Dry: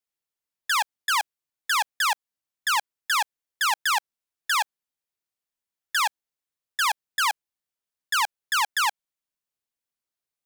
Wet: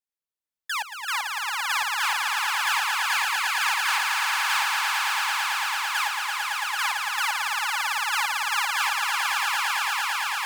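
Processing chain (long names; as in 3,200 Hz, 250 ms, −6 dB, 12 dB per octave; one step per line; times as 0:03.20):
dynamic equaliser 2,300 Hz, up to +6 dB, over −40 dBFS, Q 2.4
echo that builds up and dies away 112 ms, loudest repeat 8, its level −3.5 dB
level −7 dB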